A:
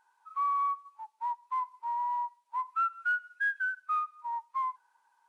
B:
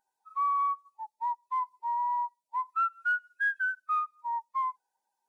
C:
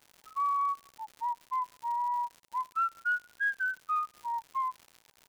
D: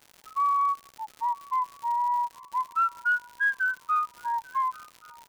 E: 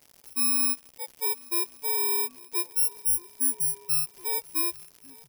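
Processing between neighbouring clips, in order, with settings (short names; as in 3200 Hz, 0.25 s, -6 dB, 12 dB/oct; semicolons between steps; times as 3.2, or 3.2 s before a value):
per-bin expansion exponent 1.5; in parallel at -2.5 dB: limiter -34 dBFS, peak gain reduction 11 dB
crackle 160/s -39 dBFS; gain -1.5 dB
swung echo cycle 1.123 s, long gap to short 3:1, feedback 33%, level -23.5 dB; gain +5 dB
FFT order left unsorted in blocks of 32 samples; outdoor echo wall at 280 m, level -15 dB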